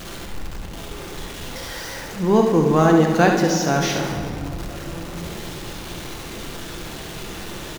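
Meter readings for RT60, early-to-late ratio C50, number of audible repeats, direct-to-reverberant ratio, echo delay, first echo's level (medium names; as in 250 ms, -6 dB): 2.5 s, 3.0 dB, 1, 1.0 dB, 70 ms, -7.5 dB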